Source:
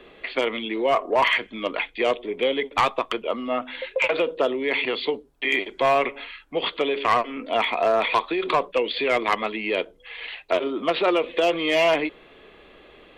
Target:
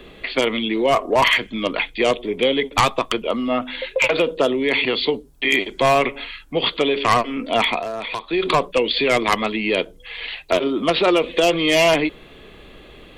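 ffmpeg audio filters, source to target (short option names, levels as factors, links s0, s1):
-filter_complex "[0:a]asplit=3[s0][s1][s2];[s0]afade=t=out:st=7.78:d=0.02[s3];[s1]acompressor=threshold=0.0316:ratio=4,afade=t=in:st=7.78:d=0.02,afade=t=out:st=8.32:d=0.02[s4];[s2]afade=t=in:st=8.32:d=0.02[s5];[s3][s4][s5]amix=inputs=3:normalize=0,bass=f=250:g=11,treble=f=4000:g=12,volume=1.41"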